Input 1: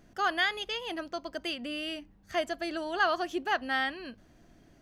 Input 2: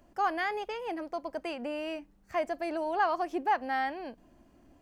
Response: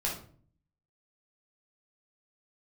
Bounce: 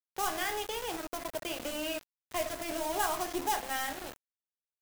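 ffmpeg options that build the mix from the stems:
-filter_complex "[0:a]acrossover=split=240[a][b];[b]acompressor=threshold=-37dB:ratio=6[c];[a][c]amix=inputs=2:normalize=0,volume=-1.5dB[d];[1:a]acrusher=bits=3:mode=log:mix=0:aa=0.000001,adelay=0.3,volume=1.5dB,asplit=2[e][f];[f]volume=-4.5dB[g];[2:a]atrim=start_sample=2205[h];[g][h]afir=irnorm=-1:irlink=0[i];[d][e][i]amix=inputs=3:normalize=0,equalizer=f=4.5k:t=o:w=0.21:g=-7.5,acrossover=split=180|3000[j][k][l];[k]acompressor=threshold=-50dB:ratio=1.5[m];[j][m][l]amix=inputs=3:normalize=0,aeval=exprs='val(0)*gte(abs(val(0)),0.015)':c=same"

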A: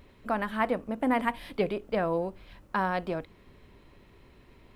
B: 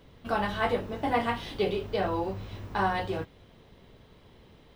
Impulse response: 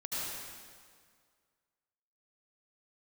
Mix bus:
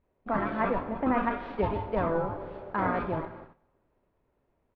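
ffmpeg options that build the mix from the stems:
-filter_complex "[0:a]volume=-2dB,asplit=2[a][b];[b]volume=-15.5dB[c];[1:a]aeval=exprs='val(0)*sin(2*PI*490*n/s)':c=same,adelay=29,volume=-1.5dB,asplit=2[d][e];[e]volume=-15dB[f];[2:a]atrim=start_sample=2205[g];[c][f]amix=inputs=2:normalize=0[h];[h][g]afir=irnorm=-1:irlink=0[i];[a][d][i]amix=inputs=3:normalize=0,lowpass=1.7k,agate=range=-19dB:threshold=-45dB:ratio=16:detection=peak"

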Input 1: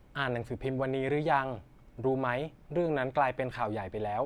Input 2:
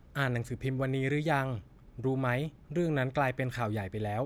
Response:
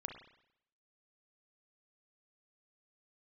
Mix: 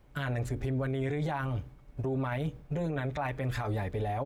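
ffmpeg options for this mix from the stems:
-filter_complex "[0:a]bandreject=f=60:t=h:w=6,bandreject=f=120:t=h:w=6,bandreject=f=180:t=h:w=6,bandreject=f=240:t=h:w=6,bandreject=f=300:t=h:w=6,bandreject=f=360:t=h:w=6,bandreject=f=420:t=h:w=6,bandreject=f=480:t=h:w=6,volume=-2dB,asplit=2[a][b];[1:a]agate=range=-33dB:threshold=-45dB:ratio=3:detection=peak,lowshelf=f=150:g=8,adelay=6.5,volume=2dB[c];[b]apad=whole_len=187813[d];[c][d]sidechaincompress=threshold=-34dB:ratio=8:attack=5.9:release=112[e];[a][e]amix=inputs=2:normalize=0,alimiter=level_in=0.5dB:limit=-24dB:level=0:latency=1:release=21,volume=-0.5dB"

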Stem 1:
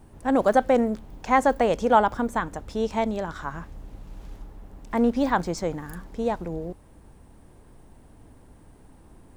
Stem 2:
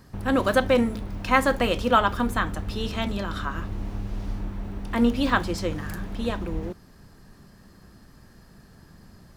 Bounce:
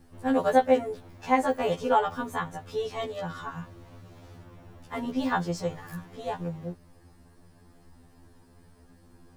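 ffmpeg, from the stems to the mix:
-filter_complex "[0:a]aeval=exprs='val(0)+0.00112*(sin(2*PI*50*n/s)+sin(2*PI*2*50*n/s)/2+sin(2*PI*3*50*n/s)/3+sin(2*PI*4*50*n/s)/4+sin(2*PI*5*50*n/s)/5)':c=same,volume=-3dB[a];[1:a]equalizer=f=130:t=o:w=0.25:g=-7,alimiter=limit=-12.5dB:level=0:latency=1:release=314,volume=-8dB[b];[a][b]amix=inputs=2:normalize=0,afftfilt=real='re*2*eq(mod(b,4),0)':imag='im*2*eq(mod(b,4),0)':win_size=2048:overlap=0.75"

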